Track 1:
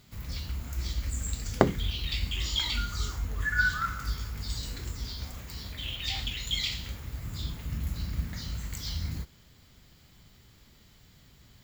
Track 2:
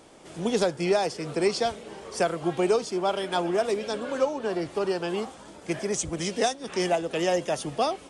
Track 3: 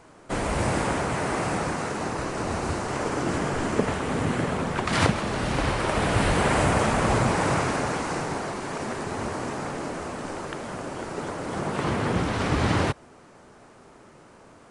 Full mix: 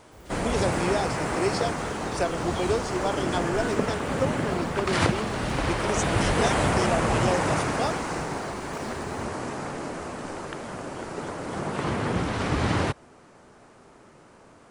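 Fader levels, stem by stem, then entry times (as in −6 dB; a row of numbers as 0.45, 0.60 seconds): −13.0, −3.0, −1.5 decibels; 0.00, 0.00, 0.00 seconds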